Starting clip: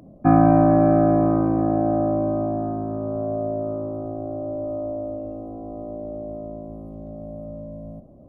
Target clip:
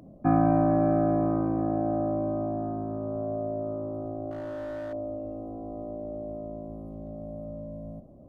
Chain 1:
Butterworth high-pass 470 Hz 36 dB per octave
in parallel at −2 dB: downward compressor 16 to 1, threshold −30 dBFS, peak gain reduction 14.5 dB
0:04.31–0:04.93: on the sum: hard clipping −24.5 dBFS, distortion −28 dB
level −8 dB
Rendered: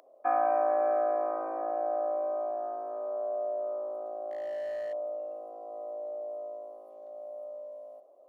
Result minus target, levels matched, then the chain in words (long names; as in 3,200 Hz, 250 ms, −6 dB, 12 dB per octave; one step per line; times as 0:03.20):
500 Hz band +3.5 dB
in parallel at −2 dB: downward compressor 16 to 1, threshold −30 dBFS, peak gain reduction 20.5 dB
0:04.31–0:04.93: on the sum: hard clipping −24.5 dBFS, distortion −26 dB
level −8 dB